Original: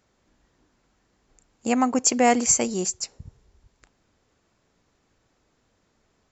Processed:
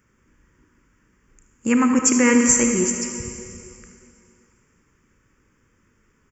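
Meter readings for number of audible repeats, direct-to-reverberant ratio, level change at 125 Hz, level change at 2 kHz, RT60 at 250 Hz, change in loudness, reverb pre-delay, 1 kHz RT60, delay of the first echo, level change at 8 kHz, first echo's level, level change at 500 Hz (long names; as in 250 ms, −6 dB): 1, 3.5 dB, +6.5 dB, +7.0 dB, 2.5 s, +4.0 dB, 25 ms, 2.8 s, 76 ms, can't be measured, −12.5 dB, +2.0 dB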